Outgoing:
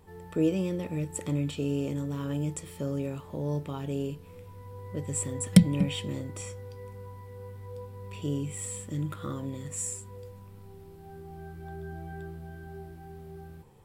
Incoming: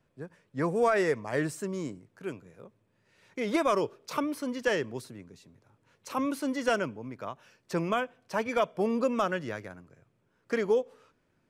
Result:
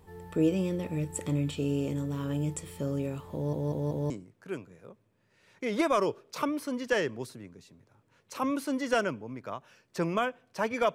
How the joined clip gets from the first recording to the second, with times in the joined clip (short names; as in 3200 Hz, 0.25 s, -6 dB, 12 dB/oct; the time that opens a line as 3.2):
outgoing
3.34 stutter in place 0.19 s, 4 plays
4.1 switch to incoming from 1.85 s